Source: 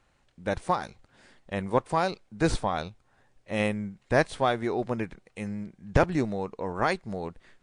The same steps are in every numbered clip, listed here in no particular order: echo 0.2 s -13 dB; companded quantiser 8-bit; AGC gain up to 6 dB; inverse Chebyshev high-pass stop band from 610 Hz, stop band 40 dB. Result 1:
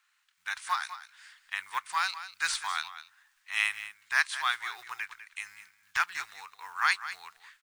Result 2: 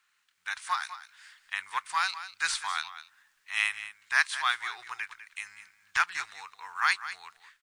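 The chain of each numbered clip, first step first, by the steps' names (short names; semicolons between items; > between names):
echo > companded quantiser > AGC > inverse Chebyshev high-pass; inverse Chebyshev high-pass > companded quantiser > AGC > echo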